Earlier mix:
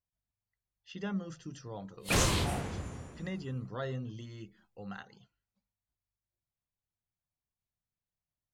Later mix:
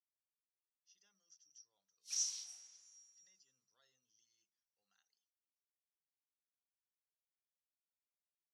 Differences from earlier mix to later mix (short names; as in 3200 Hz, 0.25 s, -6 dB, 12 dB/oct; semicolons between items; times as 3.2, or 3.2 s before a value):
background: add tilt +2.5 dB/oct; master: add band-pass 5700 Hz, Q 17